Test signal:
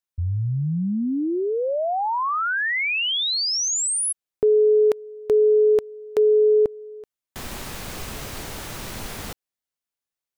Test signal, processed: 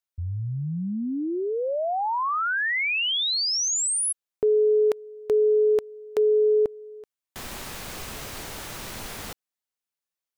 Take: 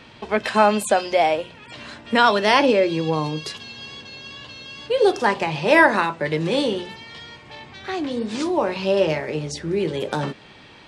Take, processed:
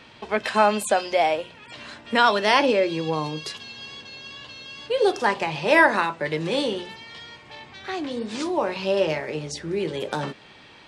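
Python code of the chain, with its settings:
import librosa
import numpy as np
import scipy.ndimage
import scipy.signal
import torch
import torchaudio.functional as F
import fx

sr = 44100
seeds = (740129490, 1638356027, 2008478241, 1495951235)

y = fx.low_shelf(x, sr, hz=360.0, db=-4.5)
y = F.gain(torch.from_numpy(y), -1.5).numpy()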